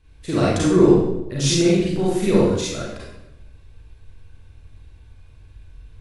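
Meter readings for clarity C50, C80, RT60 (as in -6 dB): -2.5 dB, 2.5 dB, 0.95 s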